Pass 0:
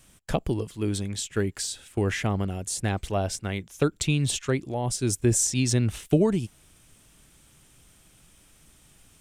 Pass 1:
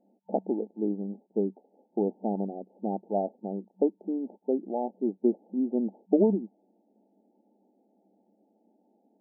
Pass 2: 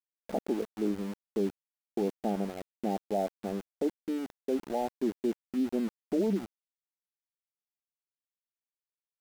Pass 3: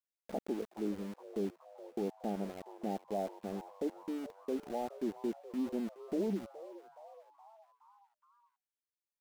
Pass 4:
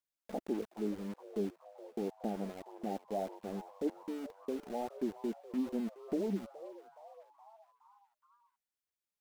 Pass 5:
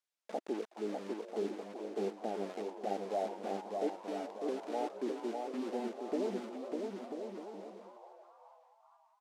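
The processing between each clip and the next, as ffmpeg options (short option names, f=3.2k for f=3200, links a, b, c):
-af "afftfilt=real='re*between(b*sr/4096,190,900)':imag='im*between(b*sr/4096,190,900)':win_size=4096:overlap=0.75"
-af "adynamicequalizer=threshold=0.0126:dfrequency=300:dqfactor=1.3:tfrequency=300:tqfactor=1.3:attack=5:release=100:ratio=0.375:range=2.5:mode=cutabove:tftype=bell,alimiter=limit=-20.5dB:level=0:latency=1:release=14,aeval=exprs='val(0)*gte(abs(val(0)),0.0112)':c=same"
-filter_complex "[0:a]asplit=6[a][b][c][d][e][f];[b]adelay=420,afreqshift=150,volume=-16dB[g];[c]adelay=840,afreqshift=300,volume=-21.2dB[h];[d]adelay=1260,afreqshift=450,volume=-26.4dB[i];[e]adelay=1680,afreqshift=600,volume=-31.6dB[j];[f]adelay=2100,afreqshift=750,volume=-36.8dB[k];[a][g][h][i][j][k]amix=inputs=6:normalize=0,volume=-6dB"
-af "aphaser=in_gain=1:out_gain=1:delay=4.8:decay=0.32:speed=1.8:type=sinusoidal,volume=-1dB"
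-filter_complex "[0:a]highpass=380,lowpass=7.9k,asplit=2[a][b];[b]aecho=0:1:600|990|1244|1408|1515:0.631|0.398|0.251|0.158|0.1[c];[a][c]amix=inputs=2:normalize=0,volume=2.5dB"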